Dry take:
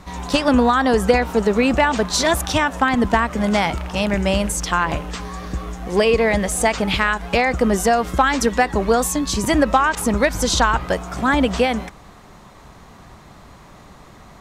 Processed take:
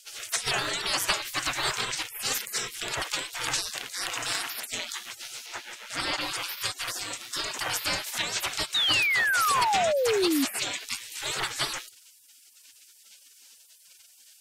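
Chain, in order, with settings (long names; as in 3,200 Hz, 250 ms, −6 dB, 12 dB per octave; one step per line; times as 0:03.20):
gate on every frequency bin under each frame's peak −30 dB weak
0:05.46–0:06.21: high-shelf EQ 5,300 Hz −8.5 dB
0:08.74–0:10.45: sound drawn into the spectrogram fall 260–3,900 Hz −33 dBFS
level +8.5 dB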